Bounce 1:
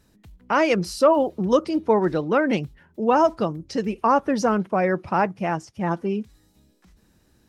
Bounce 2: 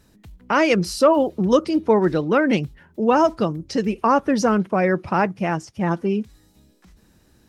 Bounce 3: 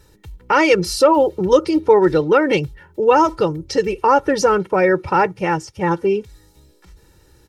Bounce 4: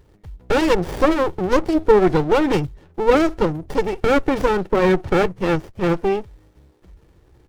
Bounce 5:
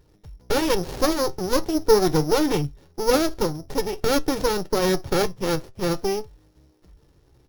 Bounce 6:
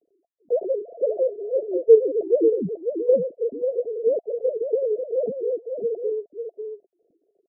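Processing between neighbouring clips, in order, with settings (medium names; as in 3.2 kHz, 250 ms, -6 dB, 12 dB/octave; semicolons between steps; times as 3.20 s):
dynamic bell 800 Hz, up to -4 dB, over -31 dBFS, Q 1; trim +4 dB
comb 2.2 ms, depth 79%; in parallel at -1 dB: peak limiter -10 dBFS, peak gain reduction 8.5 dB; on the sum: trim -2.5 dB
sliding maximum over 33 samples
sorted samples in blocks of 8 samples; flange 0.45 Hz, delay 6.3 ms, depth 1.7 ms, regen +74%
formants replaced by sine waves; rippled Chebyshev low-pass 700 Hz, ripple 3 dB; delay 544 ms -7 dB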